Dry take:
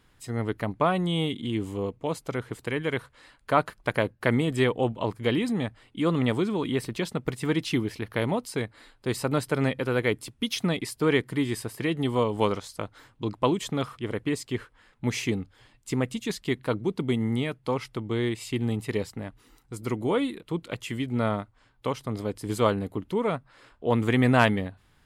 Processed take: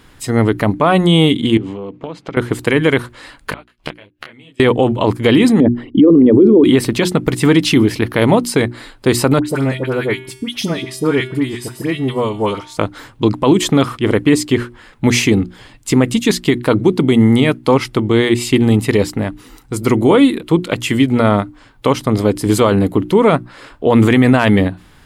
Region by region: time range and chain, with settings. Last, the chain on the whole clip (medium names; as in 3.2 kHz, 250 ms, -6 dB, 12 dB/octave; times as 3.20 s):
1.57–2.37 s: Chebyshev band-pass 150–3200 Hz + compression 16:1, threshold -38 dBFS
3.50–4.60 s: peaking EQ 2.9 kHz +13.5 dB 1.2 oct + inverted gate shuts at -23 dBFS, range -33 dB + detune thickener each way 30 cents
5.60–6.64 s: resonances exaggerated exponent 2 + peaking EQ 340 Hz +14 dB 2.1 oct
9.39–12.77 s: feedback comb 130 Hz, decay 0.85 s, harmonics odd, mix 70% + phase dispersion highs, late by 65 ms, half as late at 1.5 kHz
whole clip: peaking EQ 290 Hz +3.5 dB 0.63 oct; hum notches 60/120/180/240/300/360 Hz; loudness maximiser +17.5 dB; trim -1 dB